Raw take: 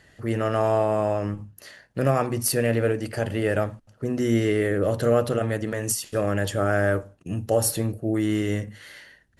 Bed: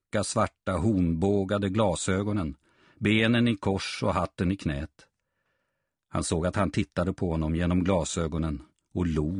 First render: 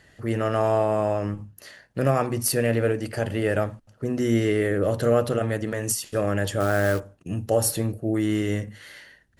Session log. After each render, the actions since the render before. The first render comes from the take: 6.60–7.00 s: short-mantissa float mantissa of 2-bit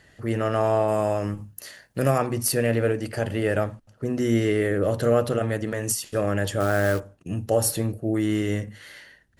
0.88–2.18 s: treble shelf 6.2 kHz +11.5 dB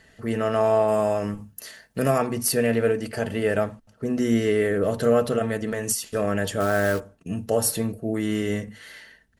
comb 4.5 ms, depth 43%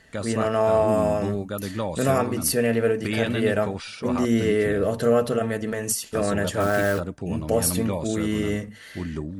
add bed -4 dB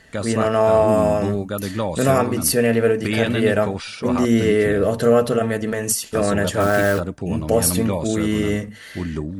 trim +4.5 dB

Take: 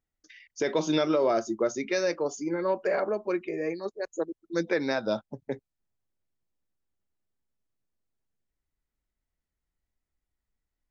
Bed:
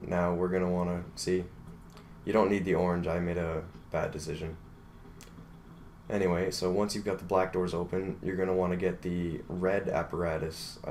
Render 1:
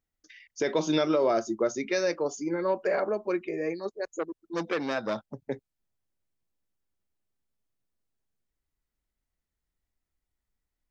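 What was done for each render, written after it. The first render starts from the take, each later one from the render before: 4.19–5.34 s: transformer saturation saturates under 1.2 kHz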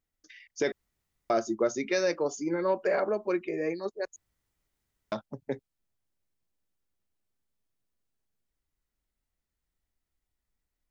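0.72–1.30 s: room tone; 4.16–5.12 s: room tone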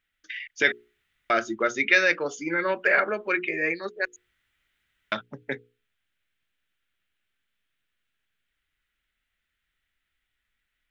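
high-order bell 2.2 kHz +16 dB; hum notches 60/120/180/240/300/360/420/480 Hz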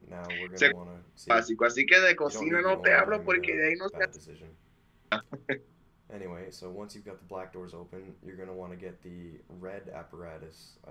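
add bed -13 dB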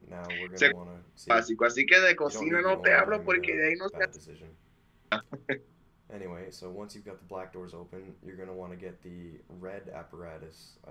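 no audible change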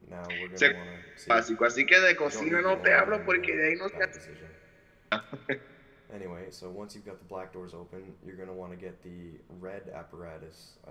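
Schroeder reverb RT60 2.9 s, combs from 32 ms, DRR 19 dB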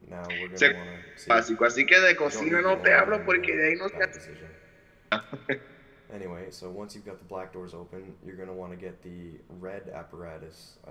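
trim +2.5 dB; peak limiter -3 dBFS, peak gain reduction 1.5 dB

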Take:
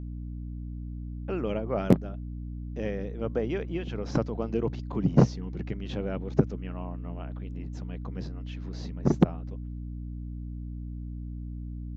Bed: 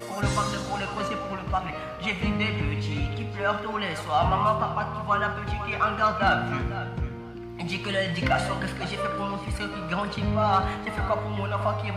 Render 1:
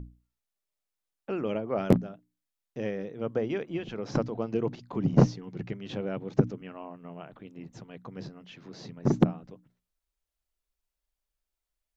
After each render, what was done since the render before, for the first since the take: hum notches 60/120/180/240/300 Hz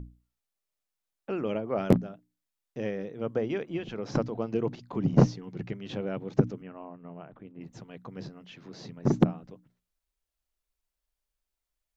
6.62–7.61 s: distance through air 490 m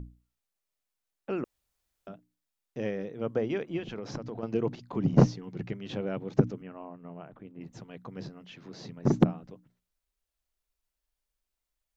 1.44–2.07 s: room tone; 3.79–4.43 s: compression 12:1, threshold -32 dBFS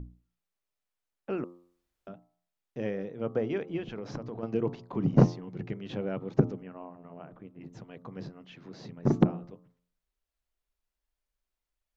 treble shelf 4.1 kHz -8 dB; de-hum 87.52 Hz, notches 15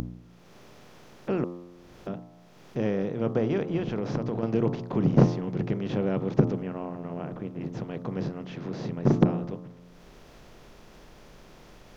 spectral levelling over time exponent 0.6; upward compressor, threshold -37 dBFS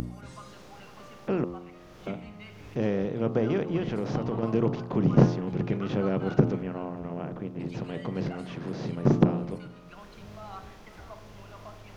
add bed -20.5 dB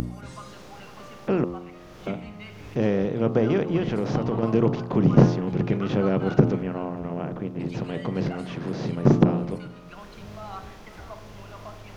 trim +4.5 dB; peak limiter -3 dBFS, peak gain reduction 2.5 dB

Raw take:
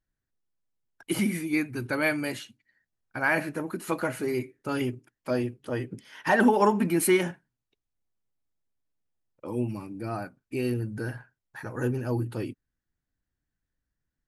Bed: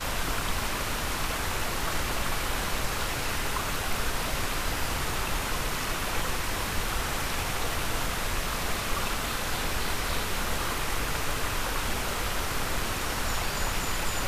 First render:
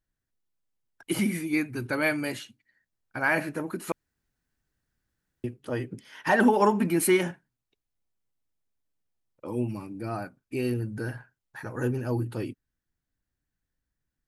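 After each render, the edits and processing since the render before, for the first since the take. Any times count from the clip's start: 3.92–5.44 s: room tone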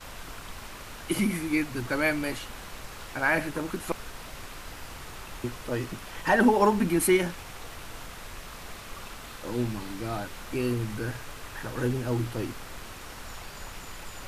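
add bed -12 dB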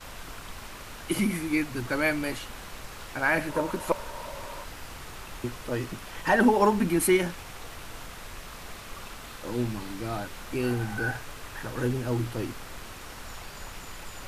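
3.49–4.64 s: small resonant body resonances 580/930 Hz, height 15 dB, ringing for 40 ms; 10.63–11.19 s: small resonant body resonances 780/1500 Hz, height 15 dB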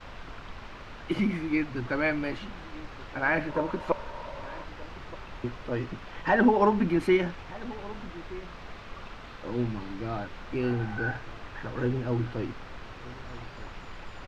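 distance through air 210 m; echo from a far wall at 210 m, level -18 dB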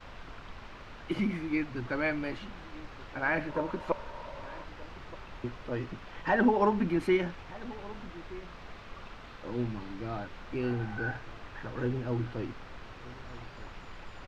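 trim -3.5 dB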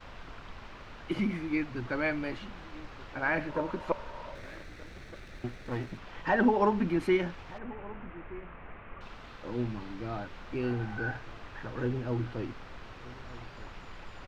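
4.35–5.98 s: comb filter that takes the minimum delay 0.49 ms; 7.58–9.01 s: steep low-pass 2.6 kHz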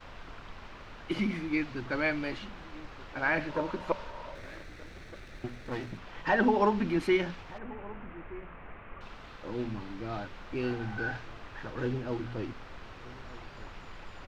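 hum notches 60/120/180/240 Hz; dynamic bell 4.4 kHz, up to +5 dB, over -50 dBFS, Q 0.7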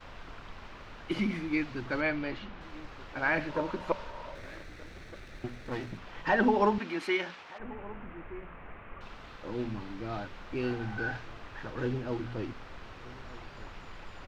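2.01–2.61 s: distance through air 120 m; 6.78–7.60 s: frequency weighting A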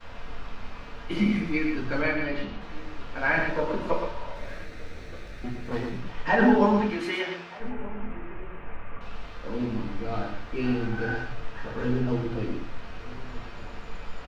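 delay 116 ms -6.5 dB; simulated room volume 160 m³, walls furnished, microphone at 1.7 m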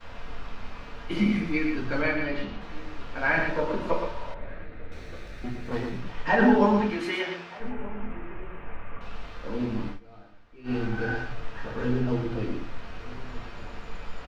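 4.34–4.92 s: distance through air 470 m; 9.88–10.76 s: dip -19.5 dB, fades 0.12 s

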